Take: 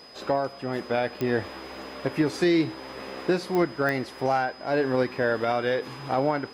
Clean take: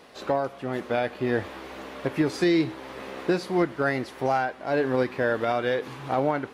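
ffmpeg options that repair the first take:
-af "adeclick=t=4,bandreject=f=5000:w=30"

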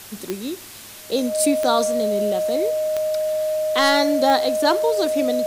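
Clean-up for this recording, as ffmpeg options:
-af "adeclick=t=4,bandreject=f=102.6:t=h:w=4,bandreject=f=205.2:t=h:w=4,bandreject=f=307.8:t=h:w=4,bandreject=f=410.4:t=h:w=4,bandreject=f=620:w=30,afwtdn=0.011"

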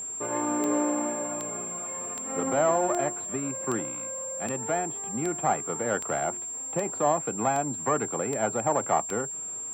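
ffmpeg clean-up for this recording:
-af "adeclick=t=4,bandreject=f=7400:w=30"

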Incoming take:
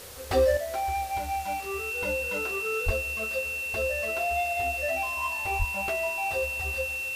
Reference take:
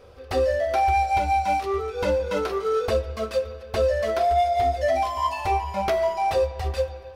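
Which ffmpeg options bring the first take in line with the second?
-filter_complex "[0:a]bandreject=f=2700:w=30,asplit=3[s0][s1][s2];[s0]afade=t=out:st=2.85:d=0.02[s3];[s1]highpass=f=140:w=0.5412,highpass=f=140:w=1.3066,afade=t=in:st=2.85:d=0.02,afade=t=out:st=2.97:d=0.02[s4];[s2]afade=t=in:st=2.97:d=0.02[s5];[s3][s4][s5]amix=inputs=3:normalize=0,asplit=3[s6][s7][s8];[s6]afade=t=out:st=5.58:d=0.02[s9];[s7]highpass=f=140:w=0.5412,highpass=f=140:w=1.3066,afade=t=in:st=5.58:d=0.02,afade=t=out:st=5.7:d=0.02[s10];[s8]afade=t=in:st=5.7:d=0.02[s11];[s9][s10][s11]amix=inputs=3:normalize=0,afwtdn=0.0063,asetnsamples=n=441:p=0,asendcmd='0.57 volume volume 9dB',volume=1"

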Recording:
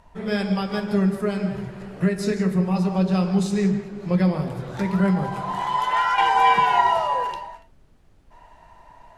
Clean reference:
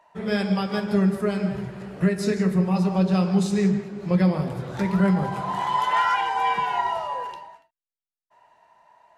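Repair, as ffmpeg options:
-af "agate=range=0.0891:threshold=0.00794,asetnsamples=n=441:p=0,asendcmd='6.18 volume volume -6.5dB',volume=1"

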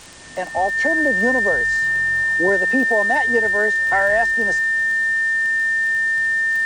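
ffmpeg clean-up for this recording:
-af "adeclick=t=4,bandreject=f=1800:w=30,afwtdn=0.01"

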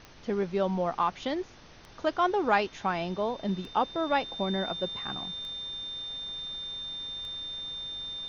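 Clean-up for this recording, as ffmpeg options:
-af "adeclick=t=4,bandreject=f=3600:w=30,afftdn=nr=25:nf=-50"

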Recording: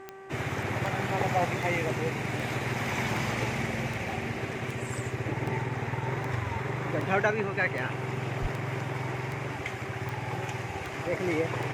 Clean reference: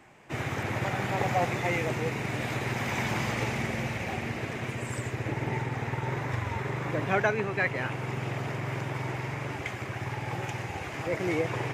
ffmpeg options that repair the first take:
-filter_complex "[0:a]adeclick=t=4,bandreject=f=387.3:t=h:w=4,bandreject=f=774.6:t=h:w=4,bandreject=f=1161.9:t=h:w=4,bandreject=f=1549.2:t=h:w=4,bandreject=f=1936.5:t=h:w=4,asplit=3[s0][s1][s2];[s0]afade=t=out:st=8.41:d=0.02[s3];[s1]highpass=f=140:w=0.5412,highpass=f=140:w=1.3066,afade=t=in:st=8.41:d=0.02,afade=t=out:st=8.53:d=0.02[s4];[s2]afade=t=in:st=8.53:d=0.02[s5];[s3][s4][s5]amix=inputs=3:normalize=0"

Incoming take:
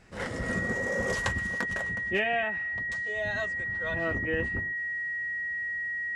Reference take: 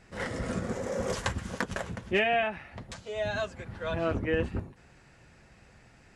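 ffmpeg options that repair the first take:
-af "bandreject=f=1900:w=30,asetnsamples=n=441:p=0,asendcmd='1.47 volume volume 3dB',volume=1"

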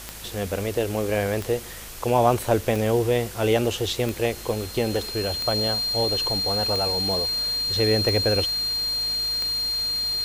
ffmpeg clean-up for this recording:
-af "adeclick=t=4,bandreject=f=53.3:t=h:w=4,bandreject=f=106.6:t=h:w=4,bandreject=f=159.9:t=h:w=4,bandreject=f=213.2:t=h:w=4,bandreject=f=4200:w=30,afwtdn=0.011"

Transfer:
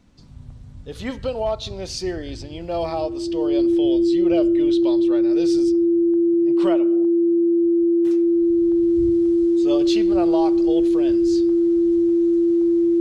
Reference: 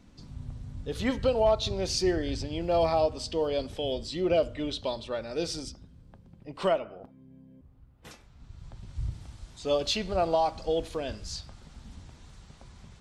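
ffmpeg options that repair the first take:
-af "bandreject=f=340:w=30"

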